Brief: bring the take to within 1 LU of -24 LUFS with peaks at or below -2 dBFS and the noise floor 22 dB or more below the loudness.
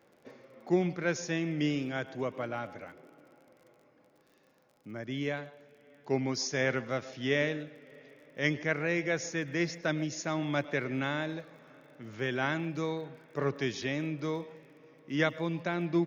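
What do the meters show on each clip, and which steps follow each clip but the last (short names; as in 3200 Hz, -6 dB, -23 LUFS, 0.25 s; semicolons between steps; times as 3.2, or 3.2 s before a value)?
ticks 41/s; loudness -33.0 LUFS; peak -13.5 dBFS; loudness target -24.0 LUFS
-> de-click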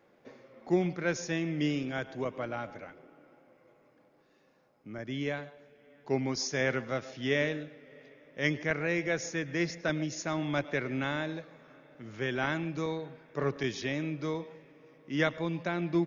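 ticks 0/s; loudness -33.0 LUFS; peak -13.5 dBFS; loudness target -24.0 LUFS
-> gain +9 dB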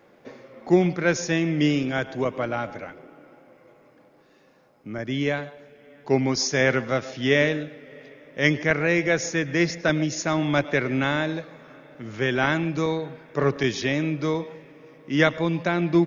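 loudness -24.0 LUFS; peak -4.5 dBFS; noise floor -57 dBFS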